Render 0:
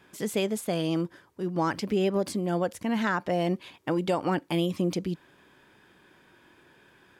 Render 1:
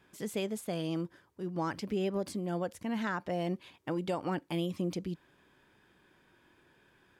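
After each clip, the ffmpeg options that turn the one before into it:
-af "lowshelf=f=89:g=7,volume=-7.5dB"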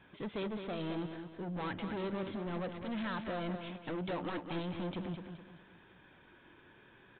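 -af "aresample=8000,asoftclip=type=tanh:threshold=-40dB,aresample=44100,flanger=delay=1.2:depth=7.6:regen=-69:speed=0.66:shape=sinusoidal,aecho=1:1:211|422|633|844:0.422|0.16|0.0609|0.0231,volume=8.5dB"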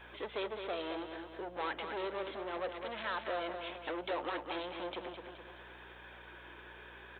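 -af "acompressor=threshold=-53dB:ratio=1.5,highpass=f=390:w=0.5412,highpass=f=390:w=1.3066,aeval=exprs='val(0)+0.000355*(sin(2*PI*60*n/s)+sin(2*PI*2*60*n/s)/2+sin(2*PI*3*60*n/s)/3+sin(2*PI*4*60*n/s)/4+sin(2*PI*5*60*n/s)/5)':c=same,volume=9.5dB"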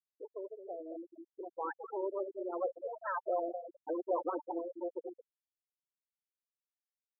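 -af "lowpass=1.7k,afftfilt=real='re*gte(hypot(re,im),0.0447)':imag='im*gte(hypot(re,im),0.0447)':win_size=1024:overlap=0.75,dynaudnorm=f=670:g=5:m=9dB,volume=-4dB"

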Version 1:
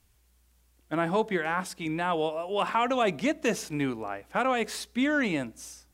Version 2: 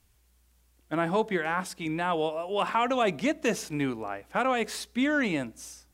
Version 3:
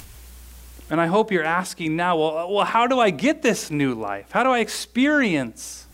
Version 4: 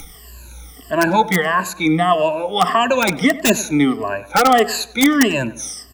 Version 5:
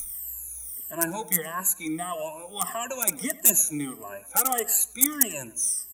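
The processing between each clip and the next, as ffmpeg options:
-af anull
-af "acompressor=mode=upward:threshold=-36dB:ratio=2.5,volume=7.5dB"
-filter_complex "[0:a]afftfilt=real='re*pow(10,23/40*sin(2*PI*(1.4*log(max(b,1)*sr/1024/100)/log(2)-(-1.6)*(pts-256)/sr)))':imag='im*pow(10,23/40*sin(2*PI*(1.4*log(max(b,1)*sr/1024/100)/log(2)-(-1.6)*(pts-256)/sr)))':win_size=1024:overlap=0.75,acrossover=split=170|1100|6800[a][b][c][d];[c]aeval=exprs='(mod(3.55*val(0)+1,2)-1)/3.55':c=same[e];[a][b][e][d]amix=inputs=4:normalize=0,asplit=2[f][g];[g]adelay=96,lowpass=f=2.3k:p=1,volume=-16.5dB,asplit=2[h][i];[i]adelay=96,lowpass=f=2.3k:p=1,volume=0.42,asplit=2[j][k];[k]adelay=96,lowpass=f=2.3k:p=1,volume=0.42,asplit=2[l][m];[m]adelay=96,lowpass=f=2.3k:p=1,volume=0.42[n];[f][h][j][l][n]amix=inputs=5:normalize=0"
-af "flanger=delay=0.8:depth=5.6:regen=42:speed=0.4:shape=sinusoidal,aexciter=amount=15.3:drive=7.3:freq=6.9k,aresample=32000,aresample=44100,volume=-13dB"

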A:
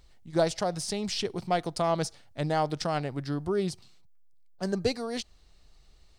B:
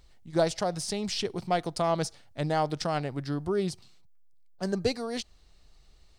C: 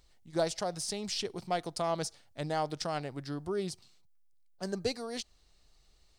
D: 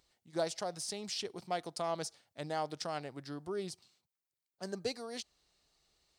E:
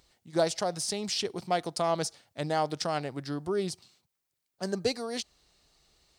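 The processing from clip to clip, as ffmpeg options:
-af anull
-af "bass=f=250:g=-3,treble=f=4k:g=4,volume=-5dB"
-af "highpass=f=190:p=1,volume=-3.5dB"
-af "lowshelf=f=240:g=3.5,volume=7.5dB"

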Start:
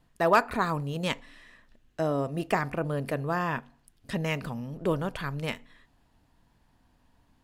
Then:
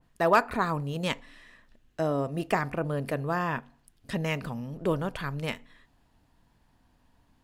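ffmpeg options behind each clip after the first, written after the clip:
-af "adynamicequalizer=threshold=0.0112:dfrequency=2600:dqfactor=0.7:tfrequency=2600:tqfactor=0.7:attack=5:release=100:ratio=0.375:range=2:mode=cutabove:tftype=highshelf"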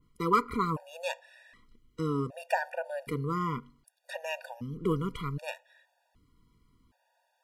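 -af "afftfilt=real='re*gt(sin(2*PI*0.65*pts/sr)*(1-2*mod(floor(b*sr/1024/480),2)),0)':imag='im*gt(sin(2*PI*0.65*pts/sr)*(1-2*mod(floor(b*sr/1024/480),2)),0)':win_size=1024:overlap=0.75"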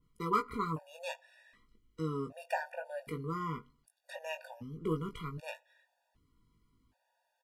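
-filter_complex "[0:a]asplit=2[a][b];[b]adelay=19,volume=-6dB[c];[a][c]amix=inputs=2:normalize=0,volume=-6.5dB"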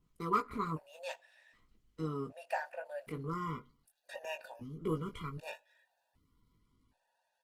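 -af "volume=-1dB" -ar 48000 -c:a libopus -b:a 16k

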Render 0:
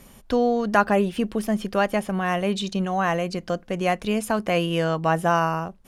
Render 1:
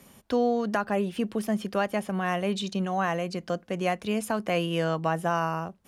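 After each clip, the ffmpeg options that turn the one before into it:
-filter_complex "[0:a]highpass=83,acrossover=split=120[a][b];[b]alimiter=limit=-10.5dB:level=0:latency=1:release=335[c];[a][c]amix=inputs=2:normalize=0,volume=-3.5dB"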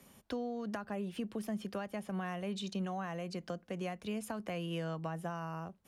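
-filter_complex "[0:a]acrossover=split=180[a][b];[b]acompressor=threshold=-31dB:ratio=6[c];[a][c]amix=inputs=2:normalize=0,volume=-6.5dB"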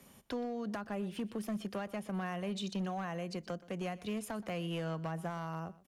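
-af "volume=32.5dB,asoftclip=hard,volume=-32.5dB,aecho=1:1:123:0.106,volume=1dB"

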